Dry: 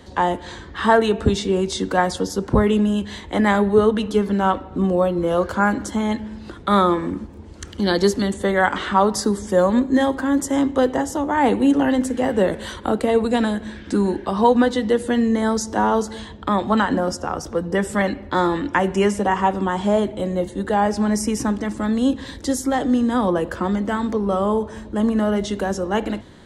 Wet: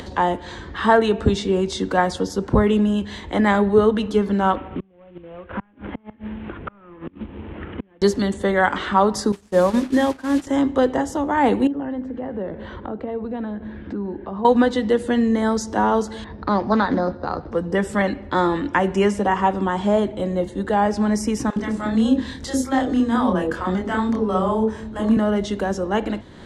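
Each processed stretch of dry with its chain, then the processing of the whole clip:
4.56–8.02 CVSD 16 kbps + flipped gate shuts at -15 dBFS, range -35 dB + three-band squash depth 70%
9.32–10.47 delta modulation 64 kbps, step -26 dBFS + notches 50/100/150/200/250 Hz + expander -18 dBFS
11.67–14.45 HPF 41 Hz + compressor 2:1, threshold -28 dBFS + tape spacing loss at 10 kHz 41 dB
16.24–17.52 careless resampling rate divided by 8×, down filtered, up hold + inverse Chebyshev low-pass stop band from 8400 Hz, stop band 50 dB + Doppler distortion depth 0.17 ms
21.5–25.17 doubler 27 ms -3.5 dB + bands offset in time highs, lows 60 ms, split 560 Hz
whole clip: high shelf 8100 Hz -10 dB; upward compressor, threshold -28 dBFS

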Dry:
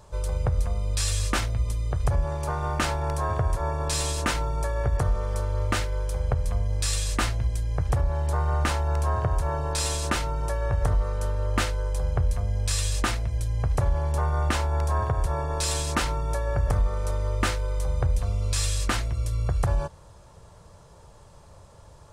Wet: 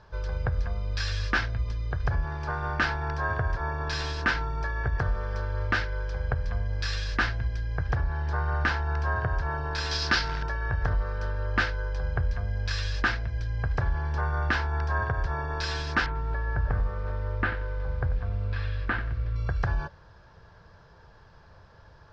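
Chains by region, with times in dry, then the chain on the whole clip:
9.91–10.43 bell 4900 Hz +12.5 dB 1 oct + companded quantiser 4-bit
16.06–19.36 air absorption 450 m + lo-fi delay 91 ms, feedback 35%, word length 7-bit, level -13.5 dB
whole clip: elliptic low-pass 5200 Hz, stop band 70 dB; bell 1600 Hz +14 dB 0.28 oct; notch 570 Hz, Q 13; gain -2.5 dB

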